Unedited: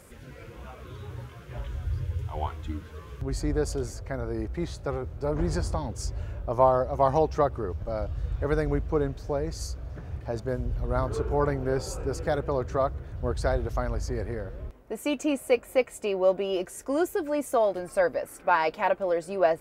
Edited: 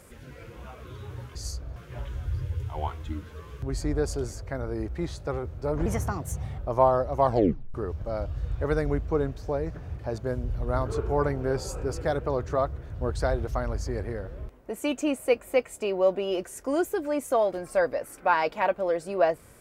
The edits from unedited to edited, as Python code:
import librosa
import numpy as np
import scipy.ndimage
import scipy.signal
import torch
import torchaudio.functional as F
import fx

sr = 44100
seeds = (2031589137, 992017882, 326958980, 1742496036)

y = fx.edit(x, sr, fx.speed_span(start_s=5.45, length_s=0.94, speed=1.3),
    fx.tape_stop(start_s=7.07, length_s=0.48),
    fx.move(start_s=9.51, length_s=0.41, to_s=1.35), tone=tone)